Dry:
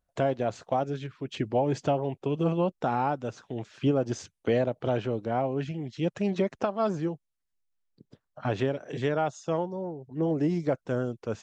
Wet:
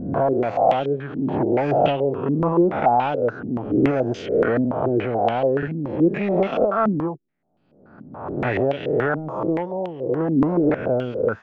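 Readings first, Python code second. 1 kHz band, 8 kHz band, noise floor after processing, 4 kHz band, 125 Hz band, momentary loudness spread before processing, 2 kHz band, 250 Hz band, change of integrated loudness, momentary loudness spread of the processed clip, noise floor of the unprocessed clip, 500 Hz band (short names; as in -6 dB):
+9.5 dB, n/a, -56 dBFS, +4.0 dB, +4.5 dB, 8 LU, +10.0 dB, +8.5 dB, +8.0 dB, 7 LU, -81 dBFS, +8.5 dB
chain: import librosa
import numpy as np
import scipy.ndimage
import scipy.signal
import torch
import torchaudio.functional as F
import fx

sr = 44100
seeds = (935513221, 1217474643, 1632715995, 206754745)

p1 = fx.spec_swells(x, sr, rise_s=0.99)
p2 = 10.0 ** (-21.5 / 20.0) * (np.abs((p1 / 10.0 ** (-21.5 / 20.0) + 3.0) % 4.0 - 2.0) - 1.0)
p3 = p1 + (p2 * librosa.db_to_amplitude(-8.0))
p4 = fx.buffer_glitch(p3, sr, at_s=(5.58, 10.65), block=2048, repeats=1)
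y = fx.filter_held_lowpass(p4, sr, hz=7.0, low_hz=250.0, high_hz=3000.0)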